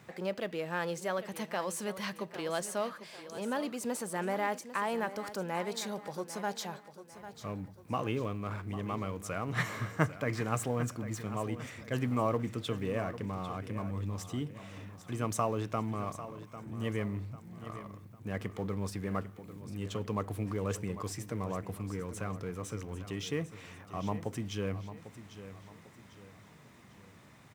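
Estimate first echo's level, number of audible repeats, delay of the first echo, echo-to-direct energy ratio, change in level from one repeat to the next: -13.0 dB, 3, 0.798 s, -12.0 dB, -8.0 dB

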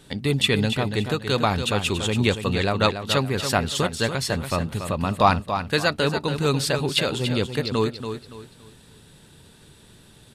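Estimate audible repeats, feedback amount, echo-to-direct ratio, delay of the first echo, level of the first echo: 3, 31%, -8.0 dB, 0.284 s, -8.5 dB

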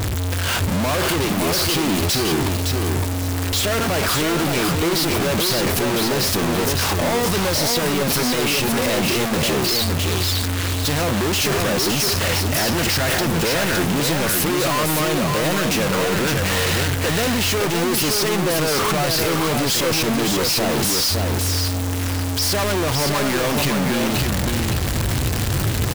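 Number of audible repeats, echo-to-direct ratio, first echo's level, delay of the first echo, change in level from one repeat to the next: 2, -4.0 dB, -4.0 dB, 0.563 s, -13.5 dB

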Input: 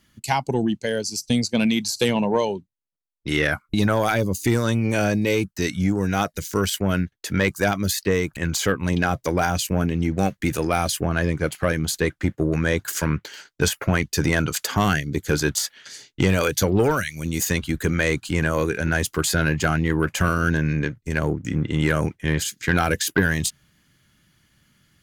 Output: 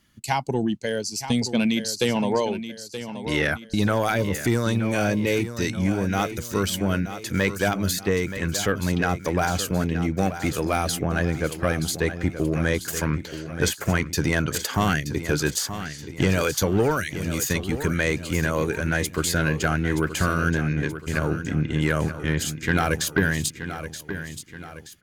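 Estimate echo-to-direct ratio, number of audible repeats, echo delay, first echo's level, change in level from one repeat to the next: -10.0 dB, 3, 0.926 s, -11.0 dB, -7.0 dB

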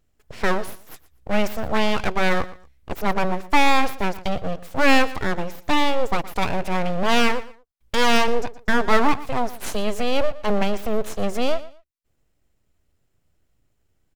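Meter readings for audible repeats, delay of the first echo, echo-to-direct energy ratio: 2, 0.118 s, -17.0 dB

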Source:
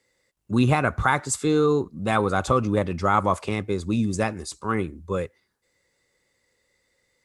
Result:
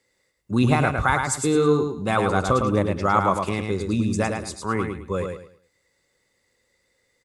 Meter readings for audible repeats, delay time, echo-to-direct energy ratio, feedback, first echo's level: 3, 0.107 s, -4.5 dB, 28%, -5.0 dB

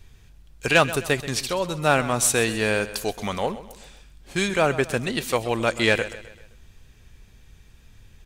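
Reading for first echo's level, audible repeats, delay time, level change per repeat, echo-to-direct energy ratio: -15.0 dB, 3, 0.13 s, -7.0 dB, -14.0 dB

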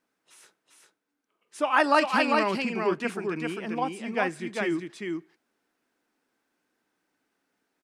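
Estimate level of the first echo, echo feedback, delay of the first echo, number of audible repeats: -3.5 dB, no steady repeat, 0.398 s, 1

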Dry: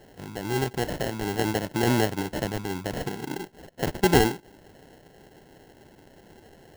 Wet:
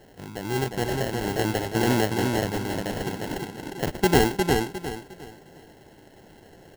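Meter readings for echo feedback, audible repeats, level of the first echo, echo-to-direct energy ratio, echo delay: 30%, 4, -3.5 dB, -3.0 dB, 0.356 s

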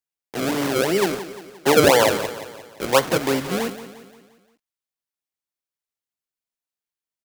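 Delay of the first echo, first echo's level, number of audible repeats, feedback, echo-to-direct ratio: 0.175 s, -13.0 dB, 4, 49%, -12.0 dB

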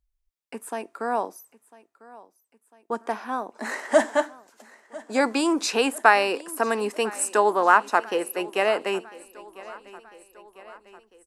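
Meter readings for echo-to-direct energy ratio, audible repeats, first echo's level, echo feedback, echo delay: -19.0 dB, 3, -20.5 dB, 56%, 0.999 s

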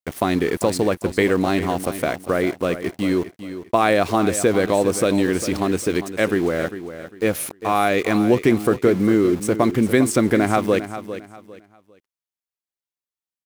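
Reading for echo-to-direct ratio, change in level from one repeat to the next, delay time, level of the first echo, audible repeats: -11.5 dB, -11.0 dB, 0.401 s, -12.0 dB, 3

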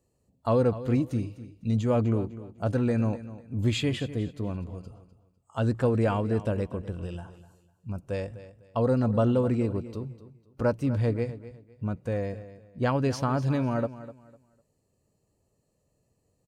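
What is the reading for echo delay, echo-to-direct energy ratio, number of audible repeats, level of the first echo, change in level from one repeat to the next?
0.251 s, -14.5 dB, 2, -15.0 dB, -11.5 dB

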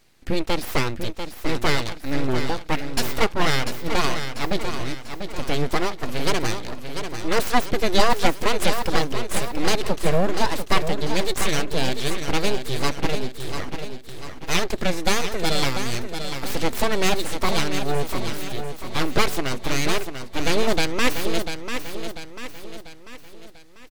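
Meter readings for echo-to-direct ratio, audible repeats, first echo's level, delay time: -7.0 dB, 5, -8.0 dB, 0.693 s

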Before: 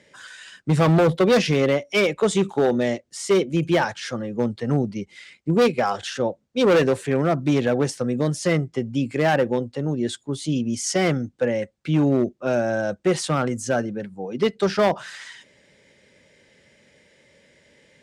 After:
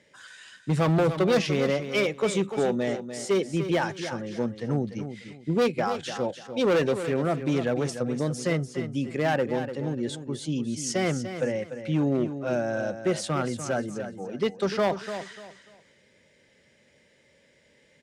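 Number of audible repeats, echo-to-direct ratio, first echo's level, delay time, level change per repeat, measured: 3, -9.5 dB, -10.0 dB, 0.295 s, -11.5 dB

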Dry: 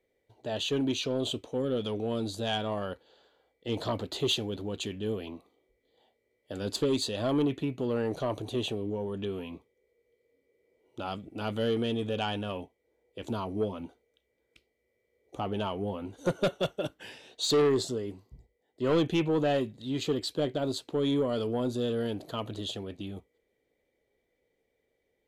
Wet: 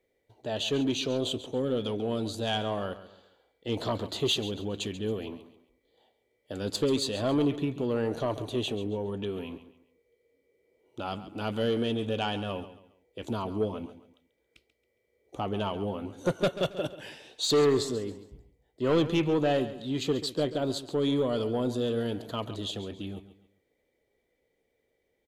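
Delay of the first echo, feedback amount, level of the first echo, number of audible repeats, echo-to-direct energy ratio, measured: 0.137 s, 34%, -14.0 dB, 3, -13.5 dB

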